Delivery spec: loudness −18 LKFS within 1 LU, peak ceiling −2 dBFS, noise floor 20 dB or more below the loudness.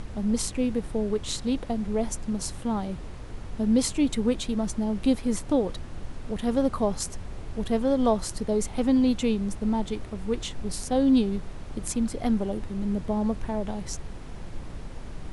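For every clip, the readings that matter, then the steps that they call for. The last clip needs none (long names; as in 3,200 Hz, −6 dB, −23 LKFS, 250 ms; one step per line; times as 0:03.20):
background noise floor −39 dBFS; target noise floor −48 dBFS; integrated loudness −27.5 LKFS; sample peak −11.5 dBFS; target loudness −18.0 LKFS
→ noise reduction from a noise print 9 dB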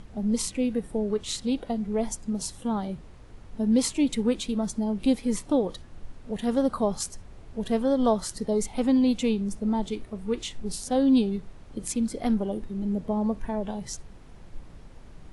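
background noise floor −47 dBFS; target noise floor −48 dBFS
→ noise reduction from a noise print 6 dB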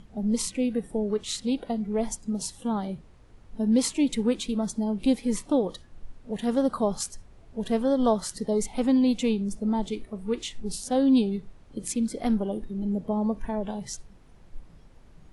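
background noise floor −53 dBFS; integrated loudness −27.5 LKFS; sample peak −12.0 dBFS; target loudness −18.0 LKFS
→ level +9.5 dB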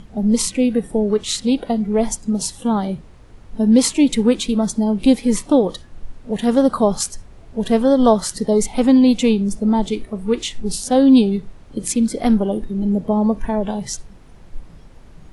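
integrated loudness −18.0 LKFS; sample peak −2.5 dBFS; background noise floor −43 dBFS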